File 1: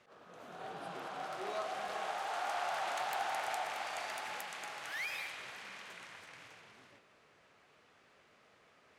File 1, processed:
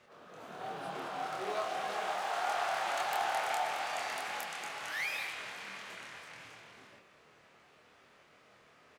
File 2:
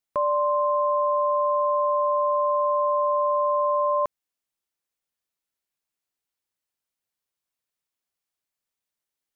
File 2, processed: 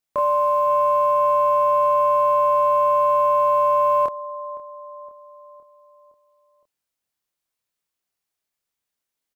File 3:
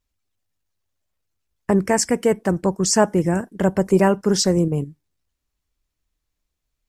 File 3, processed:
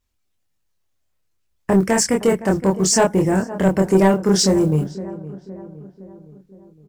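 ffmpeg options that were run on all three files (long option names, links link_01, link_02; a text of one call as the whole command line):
ffmpeg -i in.wav -filter_complex "[0:a]acrusher=bits=9:mode=log:mix=0:aa=0.000001,asplit=2[link_01][link_02];[link_02]adelay=26,volume=-3dB[link_03];[link_01][link_03]amix=inputs=2:normalize=0,asplit=2[link_04][link_05];[link_05]adelay=514,lowpass=frequency=1500:poles=1,volume=-17dB,asplit=2[link_06][link_07];[link_07]adelay=514,lowpass=frequency=1500:poles=1,volume=0.55,asplit=2[link_08][link_09];[link_09]adelay=514,lowpass=frequency=1500:poles=1,volume=0.55,asplit=2[link_10][link_11];[link_11]adelay=514,lowpass=frequency=1500:poles=1,volume=0.55,asplit=2[link_12][link_13];[link_13]adelay=514,lowpass=frequency=1500:poles=1,volume=0.55[link_14];[link_06][link_08][link_10][link_12][link_14]amix=inputs=5:normalize=0[link_15];[link_04][link_15]amix=inputs=2:normalize=0,acontrast=72,volume=-5dB" out.wav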